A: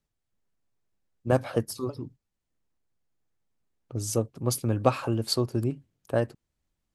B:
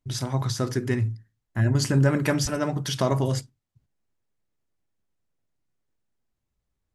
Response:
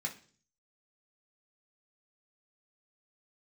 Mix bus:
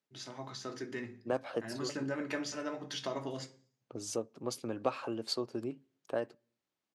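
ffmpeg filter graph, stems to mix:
-filter_complex "[0:a]volume=-2dB,asplit=2[link_01][link_02];[link_02]volume=-23dB[link_03];[1:a]dynaudnorm=framelen=490:gausssize=3:maxgain=4dB,adelay=50,volume=-9.5dB,asplit=2[link_04][link_05];[link_05]volume=-6dB[link_06];[2:a]atrim=start_sample=2205[link_07];[link_03][link_06]amix=inputs=2:normalize=0[link_08];[link_08][link_07]afir=irnorm=-1:irlink=0[link_09];[link_01][link_04][link_09]amix=inputs=3:normalize=0,highpass=280,lowpass=6200,acompressor=threshold=-39dB:ratio=1.5"

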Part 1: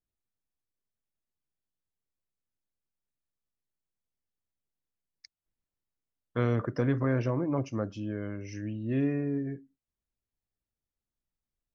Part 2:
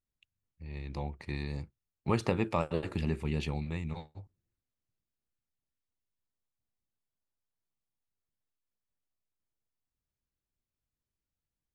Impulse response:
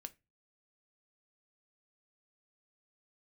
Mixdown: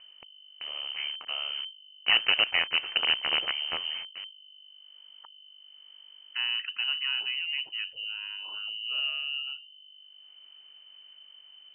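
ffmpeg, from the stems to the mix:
-filter_complex "[0:a]volume=-3.5dB[link_01];[1:a]adynamicequalizer=threshold=0.00631:dfrequency=520:dqfactor=1.3:tfrequency=520:tqfactor=1.3:attack=5:release=100:ratio=0.375:range=3.5:mode=cutabove:tftype=bell,acontrast=77,acrusher=bits=4:dc=4:mix=0:aa=0.000001,volume=-1dB[link_02];[link_01][link_02]amix=inputs=2:normalize=0,acompressor=mode=upward:threshold=-32dB:ratio=2.5,aeval=exprs='val(0)+0.00251*(sin(2*PI*50*n/s)+sin(2*PI*2*50*n/s)/2+sin(2*PI*3*50*n/s)/3+sin(2*PI*4*50*n/s)/4+sin(2*PI*5*50*n/s)/5)':channel_layout=same,lowpass=frequency=2600:width_type=q:width=0.5098,lowpass=frequency=2600:width_type=q:width=0.6013,lowpass=frequency=2600:width_type=q:width=0.9,lowpass=frequency=2600:width_type=q:width=2.563,afreqshift=-3100"

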